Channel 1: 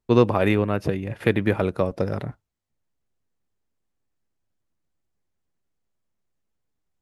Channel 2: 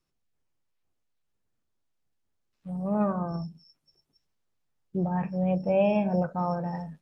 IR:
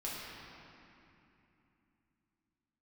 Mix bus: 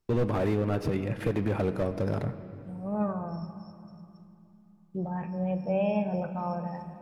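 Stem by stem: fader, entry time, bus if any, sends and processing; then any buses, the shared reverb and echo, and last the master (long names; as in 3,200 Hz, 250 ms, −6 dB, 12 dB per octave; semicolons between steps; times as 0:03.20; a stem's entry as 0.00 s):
−2.0 dB, 0.00 s, send −12.5 dB, slew-rate limiting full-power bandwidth 44 Hz
−6.0 dB, 0.00 s, send −9 dB, no processing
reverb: on, RT60 2.9 s, pre-delay 5 ms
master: brickwall limiter −17 dBFS, peak gain reduction 5.5 dB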